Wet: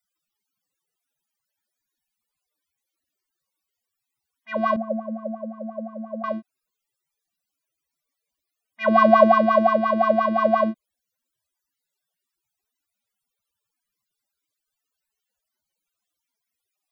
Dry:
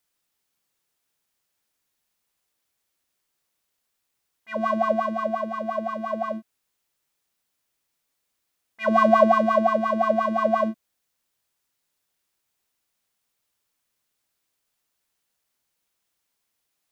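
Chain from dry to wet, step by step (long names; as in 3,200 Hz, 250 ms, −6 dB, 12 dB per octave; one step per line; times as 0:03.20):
spectral peaks only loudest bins 64
0:04.76–0:06.24: pair of resonant band-passes 350 Hz, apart 1.2 octaves
level +2.5 dB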